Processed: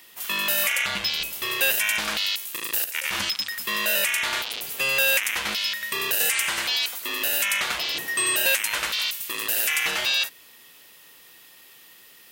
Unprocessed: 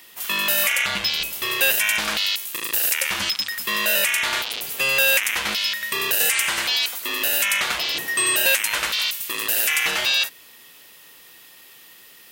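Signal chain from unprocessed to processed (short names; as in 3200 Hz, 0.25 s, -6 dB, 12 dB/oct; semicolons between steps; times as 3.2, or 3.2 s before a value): 2.84–3.25 negative-ratio compressor -25 dBFS, ratio -0.5; gain -3 dB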